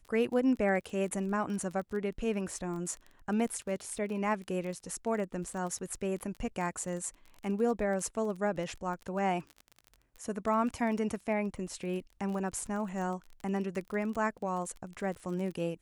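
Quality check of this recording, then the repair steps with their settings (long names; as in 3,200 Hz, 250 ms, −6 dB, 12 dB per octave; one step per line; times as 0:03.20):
surface crackle 25 per second −38 dBFS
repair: click removal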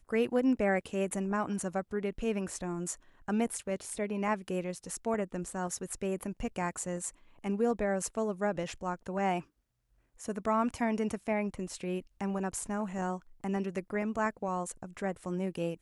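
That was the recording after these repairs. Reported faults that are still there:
none of them is left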